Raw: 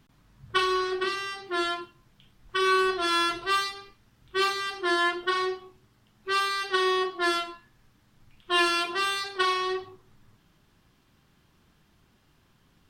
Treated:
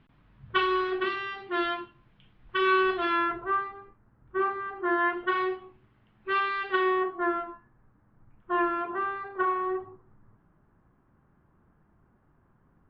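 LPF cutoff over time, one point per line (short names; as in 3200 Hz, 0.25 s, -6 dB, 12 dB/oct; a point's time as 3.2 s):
LPF 24 dB/oct
2.98 s 3100 Hz
3.44 s 1500 Hz
4.73 s 1500 Hz
5.4 s 2700 Hz
6.72 s 2700 Hz
7.28 s 1500 Hz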